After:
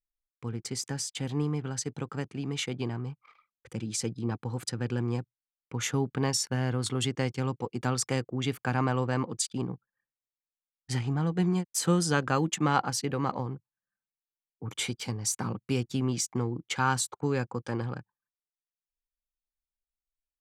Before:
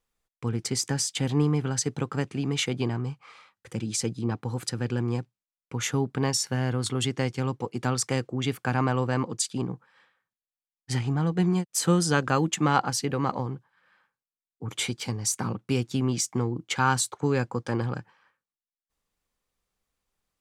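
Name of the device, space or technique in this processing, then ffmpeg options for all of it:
voice memo with heavy noise removal: -af "anlmdn=0.0158,dynaudnorm=framelen=650:gausssize=11:maxgain=4.5dB,volume=-6.5dB"

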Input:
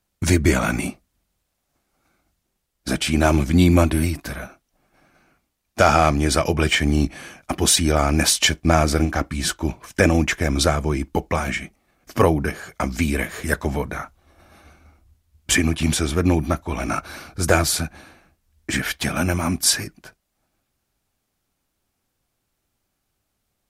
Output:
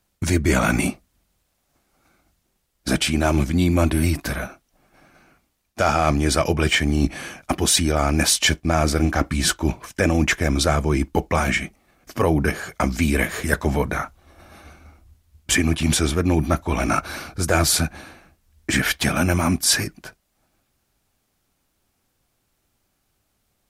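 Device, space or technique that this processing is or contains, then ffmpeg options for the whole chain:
compression on the reversed sound: -af "areverse,acompressor=threshold=-19dB:ratio=6,areverse,volume=4.5dB"

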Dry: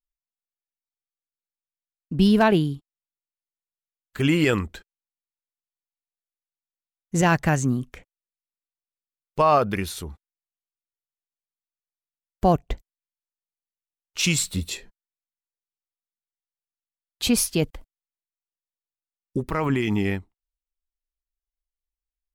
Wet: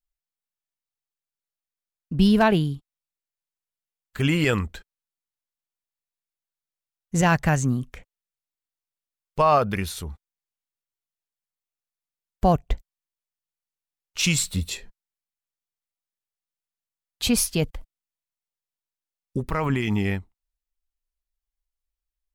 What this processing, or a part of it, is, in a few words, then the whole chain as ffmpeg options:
low shelf boost with a cut just above: -af "lowshelf=frequency=74:gain=6,equalizer=frequency=330:width_type=o:width=0.61:gain=-5"

